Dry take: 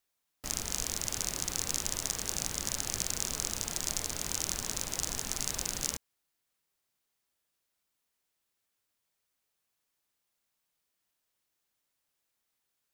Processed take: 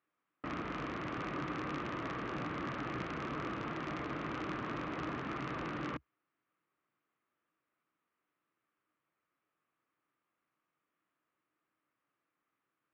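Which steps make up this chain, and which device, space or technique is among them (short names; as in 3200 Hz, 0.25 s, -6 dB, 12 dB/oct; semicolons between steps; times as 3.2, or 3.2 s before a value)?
bass cabinet (speaker cabinet 63–2400 Hz, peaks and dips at 64 Hz -8 dB, 92 Hz -10 dB, 140 Hz +4 dB, 310 Hz +10 dB, 830 Hz -3 dB, 1200 Hz +9 dB); gain +2 dB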